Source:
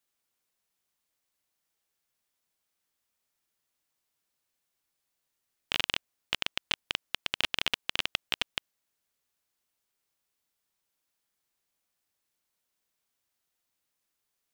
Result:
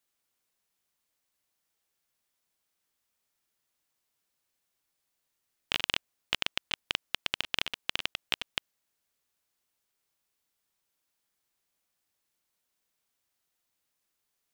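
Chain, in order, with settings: negative-ratio compressor -31 dBFS, ratio -0.5

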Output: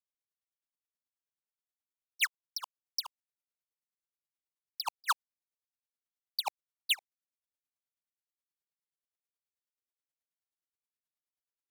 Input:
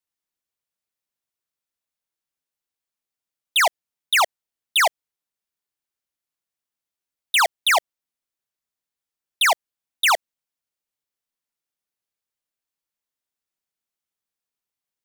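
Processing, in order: speed glide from 170% -> 87%; dB-linear tremolo 9.4 Hz, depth 35 dB; gain -7 dB

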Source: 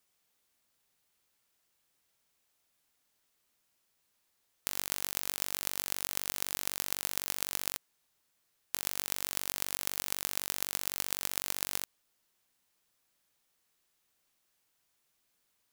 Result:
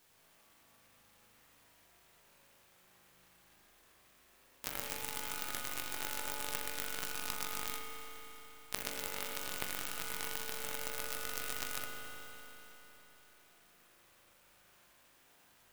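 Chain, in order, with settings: compressor 8:1, threshold -42 dBFS, peak gain reduction 16 dB; harmoniser +5 st 0 dB; chorus 0.13 Hz, delay 20 ms, depth 2.5 ms; spring tank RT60 3.9 s, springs 38 ms, chirp 45 ms, DRR -5.5 dB; clock jitter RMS 0.052 ms; gain +11 dB

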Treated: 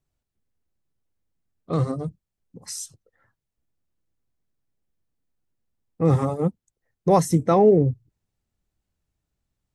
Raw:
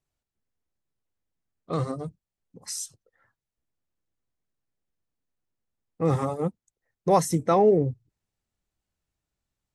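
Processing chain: low shelf 400 Hz +7 dB

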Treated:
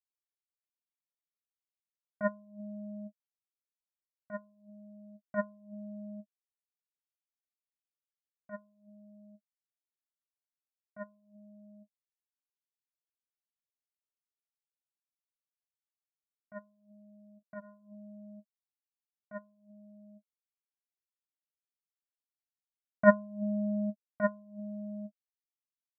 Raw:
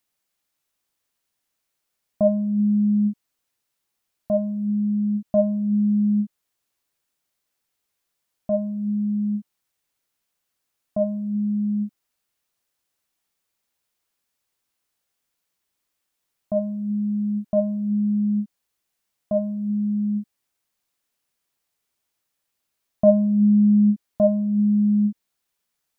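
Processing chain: 17.39–17.95 de-hum 77.11 Hz, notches 37; power-law curve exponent 3

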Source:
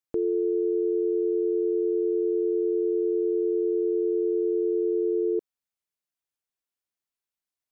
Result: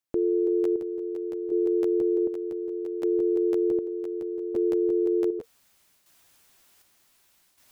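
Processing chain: chopper 0.66 Hz, depth 60%, duty 50%; notch 460 Hz, Q 12; reverse; upward compressor, threshold -40 dBFS; reverse; crackling interface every 0.17 s, samples 512, repeat, from 0.46; gain +2.5 dB

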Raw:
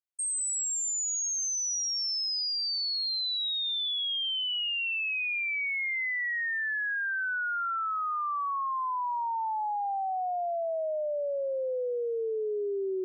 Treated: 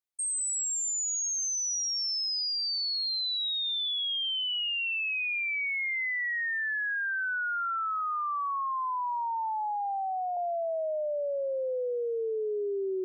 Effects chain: 8–10.37 HPF 490 Hz 12 dB/oct

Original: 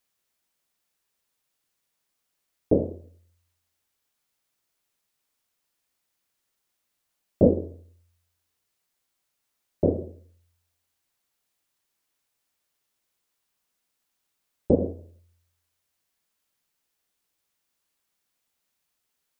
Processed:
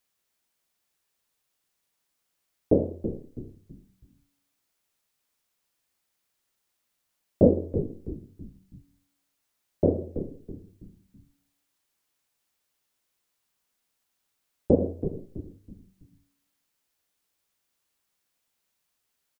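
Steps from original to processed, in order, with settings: frequency-shifting echo 0.327 s, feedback 41%, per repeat -92 Hz, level -10 dB

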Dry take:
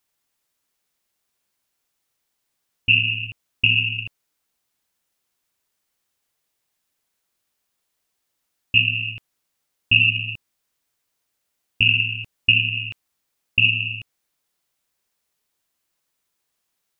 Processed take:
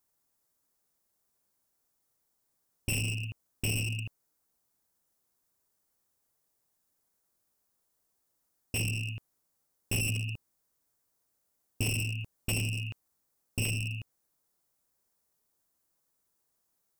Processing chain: overloaded stage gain 20.5 dB; bell 2800 Hz -13 dB 1.6 oct

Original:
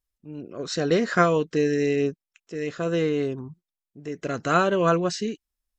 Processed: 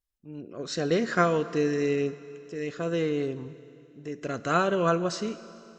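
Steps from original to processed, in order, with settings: Schroeder reverb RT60 2.8 s, combs from 27 ms, DRR 14 dB; gain -3.5 dB

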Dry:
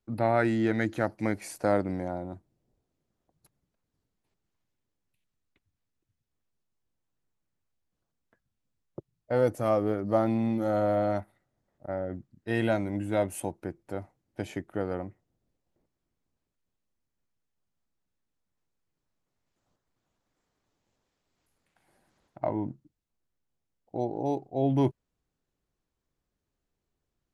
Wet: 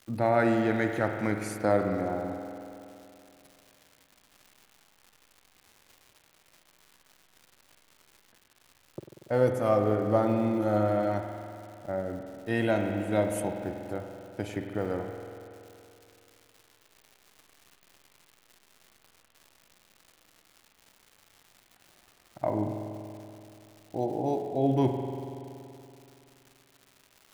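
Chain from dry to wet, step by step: crackle 280/s -44 dBFS; spring tank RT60 2.8 s, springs 47 ms, chirp 30 ms, DRR 4 dB

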